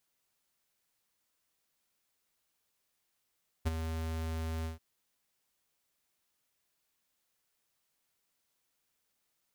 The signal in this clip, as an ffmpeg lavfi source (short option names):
-f lavfi -i "aevalsrc='0.0422*(2*lt(mod(80.7*t,1),0.5)-1)':d=1.136:s=44100,afade=t=in:d=0.021,afade=t=out:st=0.021:d=0.022:silence=0.376,afade=t=out:st=1:d=0.136"